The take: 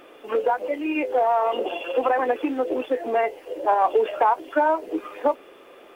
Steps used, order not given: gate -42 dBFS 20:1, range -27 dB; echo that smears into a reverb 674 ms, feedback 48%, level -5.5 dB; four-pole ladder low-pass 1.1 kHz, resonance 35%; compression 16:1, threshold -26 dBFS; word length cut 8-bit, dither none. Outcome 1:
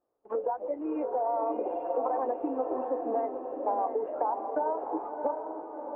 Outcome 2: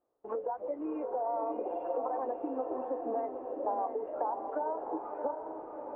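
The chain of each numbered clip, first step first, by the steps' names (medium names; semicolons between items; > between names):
word length cut > four-pole ladder low-pass > compression > gate > echo that smears into a reverb; compression > word length cut > echo that smears into a reverb > gate > four-pole ladder low-pass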